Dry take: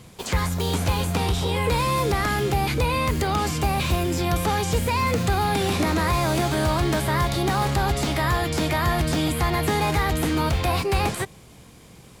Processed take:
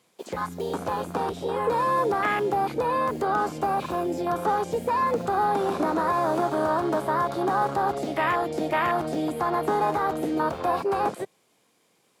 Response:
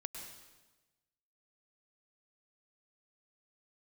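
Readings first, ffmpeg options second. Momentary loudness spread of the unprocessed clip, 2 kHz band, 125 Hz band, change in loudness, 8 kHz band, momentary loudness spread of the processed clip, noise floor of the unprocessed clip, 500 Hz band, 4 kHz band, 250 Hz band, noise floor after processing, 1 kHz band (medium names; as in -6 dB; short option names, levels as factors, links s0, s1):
2 LU, -4.5 dB, -15.0 dB, -2.5 dB, -14.5 dB, 5 LU, -48 dBFS, +0.5 dB, -13.5 dB, -4.0 dB, -67 dBFS, +1.0 dB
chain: -af "afwtdn=0.0631,highpass=340,volume=1.26"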